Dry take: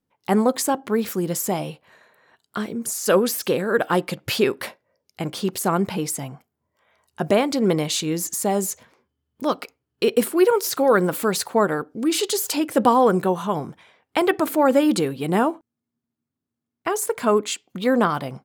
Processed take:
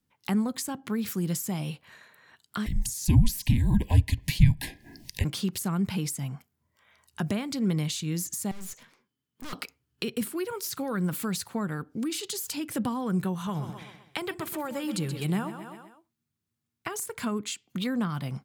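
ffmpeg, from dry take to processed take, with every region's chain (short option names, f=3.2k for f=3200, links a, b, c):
-filter_complex "[0:a]asettb=1/sr,asplit=3[a][b][c];[a]atrim=end=2.664[d];[b]atrim=start=2.66:end=5.24,asetpts=PTS-STARTPTS,afade=t=in:d=0.004:c=qsin,afade=t=out:st=2.576:d=0.004:c=qsin,acompressor=mode=upward:threshold=-28dB:ratio=2.5:attack=3.2:release=140:knee=2.83:detection=peak,afreqshift=-260,asuperstop=centerf=1300:order=20:qfactor=2.4[e];[c]atrim=start=5.236[f];[d][e]acrossfade=d=0.004:c1=hsin:c2=qsin[g];[g][f]acrossfade=d=0.004:c1=qsin:c2=hsin,asettb=1/sr,asplit=3[h][i][j];[h]atrim=end=8.514[k];[i]atrim=start=8.51:end=9.53,asetpts=PTS-STARTPTS,afade=t=in:d=0.004:c=qsin,afade=t=out:st=1.016:d=0.004:c=qsin,highpass=f=140:w=0.5412,highpass=f=140:w=1.3066,acrossover=split=2600[l][m];[m]acompressor=threshold=-34dB:ratio=4:attack=1:release=60[n];[l][n]amix=inputs=2:normalize=0,aeval=exprs='(tanh(79.4*val(0)+0.65)-tanh(0.65))/79.4':c=same[o];[j]atrim=start=9.526[p];[k][o]acrossfade=d=0.004:c1=hsin:c2=qsin[q];[q][p]acrossfade=d=0.004:c1=qsin:c2=hsin,asettb=1/sr,asplit=3[r][s][t];[r]atrim=end=13.344[u];[s]atrim=start=13.34:end=17,asetpts=PTS-STARTPTS,afade=t=in:d=0.004:c=qsin,afade=t=out:st=3.656:d=0.004:c=qsin,equalizer=f=260:w=6.6:g=-14,aecho=1:1:127|254|381|508:0.237|0.104|0.0459|0.0202,atrim=end_sample=161406[v];[t]atrim=start=16.996[w];[u][v]acrossfade=d=0.004:c1=hsin:c2=qsin[x];[x][w]acrossfade=d=0.004:c1=qsin:c2=hsin,equalizer=f=550:t=o:w=2.1:g=-11,acrossover=split=190[y][z];[z]acompressor=threshold=-37dB:ratio=6[aa];[y][aa]amix=inputs=2:normalize=0,volume=4.5dB"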